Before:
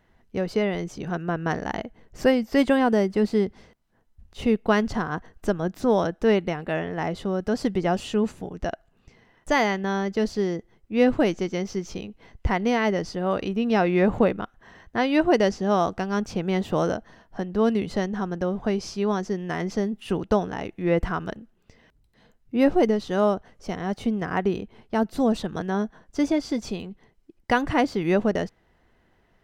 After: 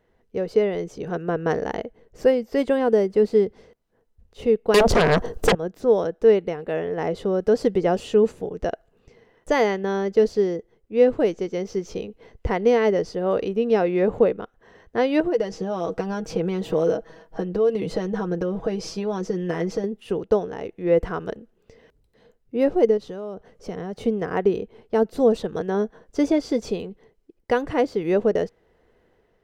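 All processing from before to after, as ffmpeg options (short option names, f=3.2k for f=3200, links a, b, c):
-filter_complex "[0:a]asettb=1/sr,asplit=3[a][b][c];[a]atrim=end=4.744[d];[b]atrim=start=4.74:end=5.55,asetpts=PTS-STARTPTS,afade=t=in:d=0.004:c=qsin,afade=t=out:st=0.806:d=0.004:c=qsin,equalizer=f=1.9k:t=o:w=1.3:g=-8.5,aeval=exprs='0.335*sin(PI/2*8.91*val(0)/0.335)':c=same[e];[c]atrim=start=5.546[f];[d][e]acrossfade=d=0.004:c1=hsin:c2=qsin[g];[g][f]acrossfade=d=0.004:c1=qsin:c2=hsin,asettb=1/sr,asplit=3[h][i][j];[h]atrim=end=15.204[k];[i]atrim=start=15.2:end=19.84,asetpts=PTS-STARTPTS,afade=t=in:d=0.004:c=qsin,afade=t=out:st=4.636:d=0.004:c=qsin,acompressor=threshold=-24dB:ratio=10:attack=3.2:release=140:knee=1:detection=peak,aecho=1:1:6.2:0.67,atrim=end_sample=204624[l];[j]atrim=start=19.836[m];[k][l]acrossfade=d=0.004:c1=hsin:c2=qsin[n];[n][m]acrossfade=d=0.004:c1=qsin:c2=hsin,asettb=1/sr,asplit=3[o][p][q];[o]atrim=end=22.974[r];[p]atrim=start=22.97:end=24.03,asetpts=PTS-STARTPTS,afade=t=in:d=0.004:c=qsin,afade=t=out:st=1.056:d=0.004:c=qsin,equalizer=f=170:w=2.2:g=5,acompressor=threshold=-28dB:ratio=8:attack=3.2:release=140:knee=1:detection=peak[s];[q]atrim=start=24.026[t];[r][s]acrossfade=d=0.004:c1=hsin:c2=qsin[u];[u][t]acrossfade=d=0.004:c1=qsin:c2=hsin,equalizer=f=460:w=2.4:g=13,dynaudnorm=f=150:g=7:m=5.5dB,volume=-5.5dB"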